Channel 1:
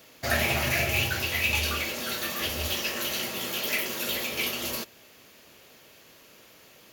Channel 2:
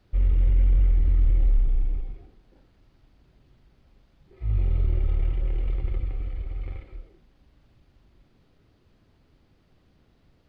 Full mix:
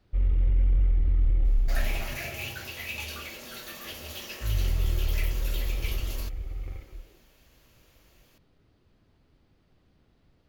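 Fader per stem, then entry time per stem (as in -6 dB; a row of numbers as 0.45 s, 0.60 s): -10.0 dB, -3.0 dB; 1.45 s, 0.00 s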